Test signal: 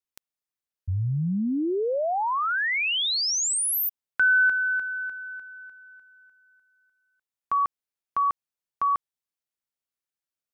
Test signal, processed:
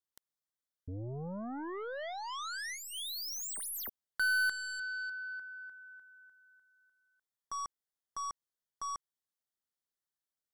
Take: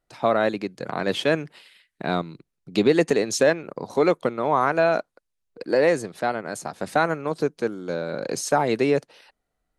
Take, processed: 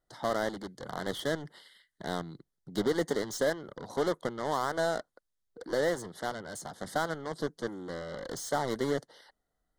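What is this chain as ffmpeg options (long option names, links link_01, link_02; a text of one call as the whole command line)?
ffmpeg -i in.wav -af "asoftclip=type=tanh:threshold=-20.5dB,aeval=exprs='0.0944*(cos(1*acos(clip(val(0)/0.0944,-1,1)))-cos(1*PI/2))+0.00376*(cos(2*acos(clip(val(0)/0.0944,-1,1)))-cos(2*PI/2))+0.0422*(cos(3*acos(clip(val(0)/0.0944,-1,1)))-cos(3*PI/2))+0.0299*(cos(5*acos(clip(val(0)/0.0944,-1,1)))-cos(5*PI/2))+0.000668*(cos(7*acos(clip(val(0)/0.0944,-1,1)))-cos(7*PI/2))':channel_layout=same,asuperstop=centerf=2500:order=8:qfactor=2.9,volume=-5dB" out.wav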